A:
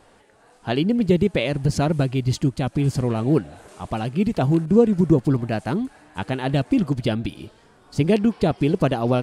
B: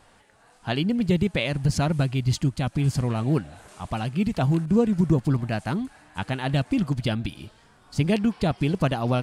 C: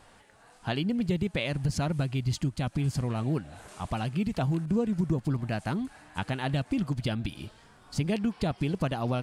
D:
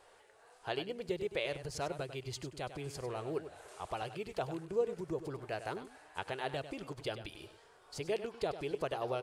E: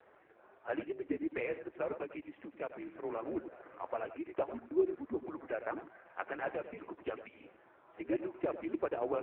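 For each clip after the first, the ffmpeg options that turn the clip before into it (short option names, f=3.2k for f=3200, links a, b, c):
-af "equalizer=f=400:t=o:w=1.4:g=-8"
-af "acompressor=threshold=-29dB:ratio=2"
-af "lowshelf=f=310:t=q:w=3:g=-9.5,aecho=1:1:98:0.266,volume=-6.5dB"
-af "highpass=f=400:t=q:w=0.5412,highpass=f=400:t=q:w=1.307,lowpass=f=2.4k:t=q:w=0.5176,lowpass=f=2.4k:t=q:w=0.7071,lowpass=f=2.4k:t=q:w=1.932,afreqshift=-94,volume=4dB" -ar 8000 -c:a libopencore_amrnb -b:a 5150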